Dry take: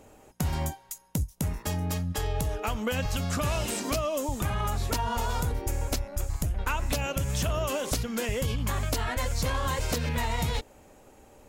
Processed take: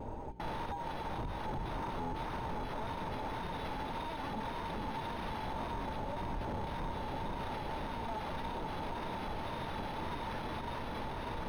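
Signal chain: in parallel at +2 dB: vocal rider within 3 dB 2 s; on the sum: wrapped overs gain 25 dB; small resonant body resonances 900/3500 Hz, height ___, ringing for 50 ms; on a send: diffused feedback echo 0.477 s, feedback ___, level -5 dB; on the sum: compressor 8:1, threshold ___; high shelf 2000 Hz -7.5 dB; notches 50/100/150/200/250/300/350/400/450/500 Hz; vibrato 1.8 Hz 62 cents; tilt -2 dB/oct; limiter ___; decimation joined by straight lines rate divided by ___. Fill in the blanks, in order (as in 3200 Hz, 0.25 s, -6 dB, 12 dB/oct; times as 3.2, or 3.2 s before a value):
15 dB, 69%, -28 dBFS, -30 dBFS, 6×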